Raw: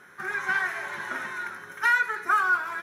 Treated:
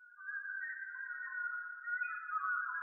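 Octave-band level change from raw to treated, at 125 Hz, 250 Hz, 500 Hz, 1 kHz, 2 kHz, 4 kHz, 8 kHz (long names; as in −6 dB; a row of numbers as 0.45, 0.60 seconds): can't be measured, below −40 dB, below −40 dB, −14.0 dB, −13.0 dB, below −40 dB, below −35 dB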